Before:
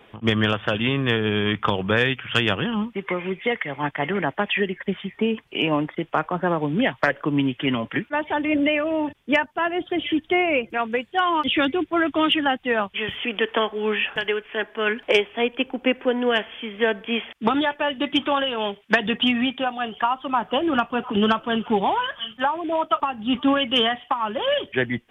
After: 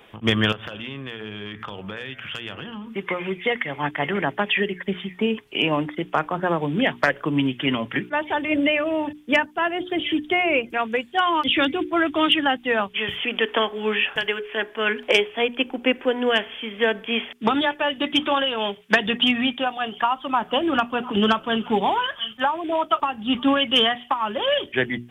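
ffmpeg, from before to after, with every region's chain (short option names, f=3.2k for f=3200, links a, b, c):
-filter_complex "[0:a]asettb=1/sr,asplit=3[a][b][c];[a]atrim=end=0.524[d];[b]atrim=start=0.52:end=2.96,asetpts=PTS-STARTPTS,afade=t=in:d=0.004:c=qsin,afade=t=out:st=2.436:d=0.004:c=qsin,bandreject=f=111.5:t=h:w=4,bandreject=f=223:t=h:w=4,bandreject=f=334.5:t=h:w=4,bandreject=f=446:t=h:w=4,bandreject=f=557.5:t=h:w=4,bandreject=f=669:t=h:w=4,bandreject=f=780.5:t=h:w=4,bandreject=f=892:t=h:w=4,bandreject=f=1.0035k:t=h:w=4,bandreject=f=1.115k:t=h:w=4,bandreject=f=1.2265k:t=h:w=4,bandreject=f=1.338k:t=h:w=4,bandreject=f=1.4495k:t=h:w=4,bandreject=f=1.561k:t=h:w=4,bandreject=f=1.6725k:t=h:w=4,bandreject=f=1.784k:t=h:w=4,bandreject=f=1.8955k:t=h:w=4,bandreject=f=2.007k:t=h:w=4,bandreject=f=2.1185k:t=h:w=4,bandreject=f=2.23k:t=h:w=4,bandreject=f=2.3415k:t=h:w=4,acompressor=threshold=-31dB:ratio=6:attack=3.2:release=140:knee=1:detection=peak,asoftclip=type=hard:threshold=-20dB[e];[c]atrim=start=2.956[f];[d][e]acrossfade=d=0.004:c1=hsin:c2=qsin[g];[g][f]acrossfade=d=0.004:c1=qsin:c2=hsin,highshelf=f=4.5k:g=8.5,bandreject=f=60:t=h:w=6,bandreject=f=120:t=h:w=6,bandreject=f=180:t=h:w=6,bandreject=f=240:t=h:w=6,bandreject=f=300:t=h:w=6,bandreject=f=360:t=h:w=6,bandreject=f=420:t=h:w=6"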